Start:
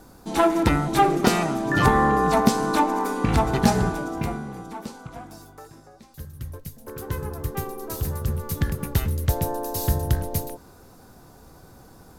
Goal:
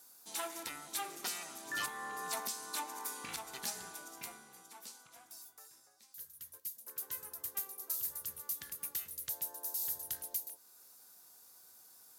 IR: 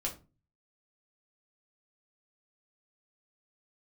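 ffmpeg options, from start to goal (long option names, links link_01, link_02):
-filter_complex "[0:a]aderivative,alimiter=limit=-23.5dB:level=0:latency=1:release=453,asplit=2[link_01][link_02];[1:a]atrim=start_sample=2205[link_03];[link_02][link_03]afir=irnorm=-1:irlink=0,volume=-15dB[link_04];[link_01][link_04]amix=inputs=2:normalize=0,volume=-3dB"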